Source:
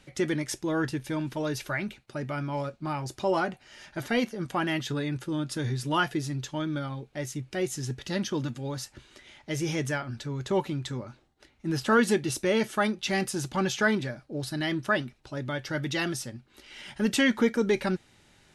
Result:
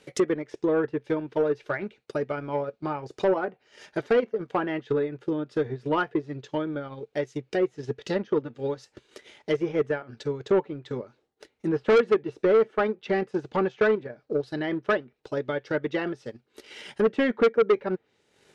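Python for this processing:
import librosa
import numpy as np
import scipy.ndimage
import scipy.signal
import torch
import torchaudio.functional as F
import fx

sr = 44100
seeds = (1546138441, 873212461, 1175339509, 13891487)

y = fx.env_lowpass_down(x, sr, base_hz=1900.0, full_db=-26.5)
y = fx.highpass(y, sr, hz=210.0, slope=6)
y = fx.peak_eq(y, sr, hz=450.0, db=13.5, octaves=0.44)
y = fx.transient(y, sr, attack_db=6, sustain_db=-9)
y = 10.0 ** (-15.0 / 20.0) * np.tanh(y / 10.0 ** (-15.0 / 20.0))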